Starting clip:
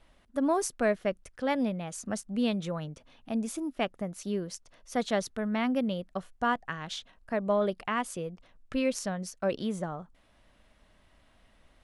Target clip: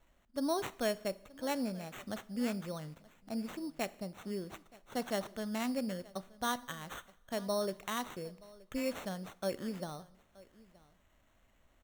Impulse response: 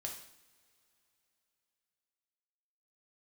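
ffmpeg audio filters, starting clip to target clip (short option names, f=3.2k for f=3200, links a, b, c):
-filter_complex "[0:a]asplit=2[a][b];[b]aecho=0:1:925:0.0794[c];[a][c]amix=inputs=2:normalize=0,acrusher=samples=9:mix=1:aa=0.000001,asplit=2[d][e];[1:a]atrim=start_sample=2205[f];[e][f]afir=irnorm=-1:irlink=0,volume=-9.5dB[g];[d][g]amix=inputs=2:normalize=0,volume=-8.5dB"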